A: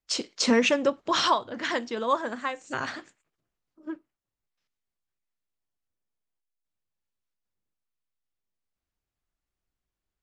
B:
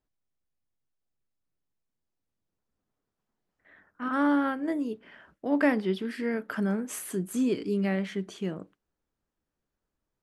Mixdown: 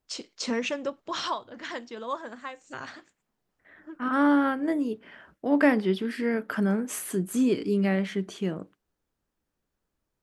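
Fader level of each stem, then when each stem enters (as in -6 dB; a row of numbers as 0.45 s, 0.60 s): -7.5 dB, +3.0 dB; 0.00 s, 0.00 s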